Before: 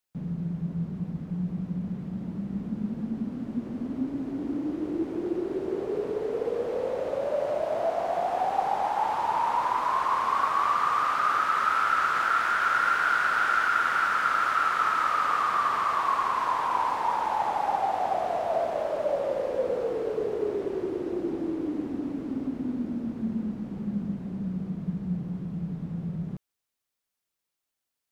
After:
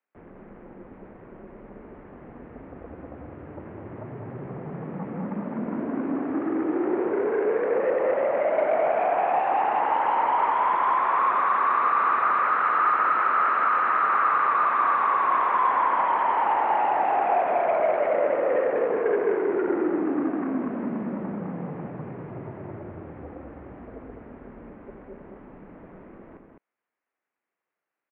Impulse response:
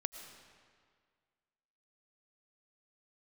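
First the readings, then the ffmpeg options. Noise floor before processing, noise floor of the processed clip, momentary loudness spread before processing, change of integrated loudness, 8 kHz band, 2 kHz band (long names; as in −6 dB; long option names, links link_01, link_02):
−85 dBFS, below −85 dBFS, 10 LU, +4.5 dB, below −30 dB, −1.0 dB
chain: -filter_complex "[0:a]aeval=exprs='0.282*(cos(1*acos(clip(val(0)/0.282,-1,1)))-cos(1*PI/2))+0.0316*(cos(6*acos(clip(val(0)/0.282,-1,1)))-cos(6*PI/2))':channel_layout=same,asplit=2[link_01][link_02];[link_02]aeval=exprs='0.266*sin(PI/2*3.55*val(0)/0.266)':channel_layout=same,volume=-10.5dB[link_03];[link_01][link_03]amix=inputs=2:normalize=0,highpass=frequency=420:width_type=q:width=0.5412,highpass=frequency=420:width_type=q:width=1.307,lowpass=frequency=2400:width_type=q:width=0.5176,lowpass=frequency=2400:width_type=q:width=0.7071,lowpass=frequency=2400:width_type=q:width=1.932,afreqshift=-150,aecho=1:1:90.38|207:0.316|0.562,volume=-3dB"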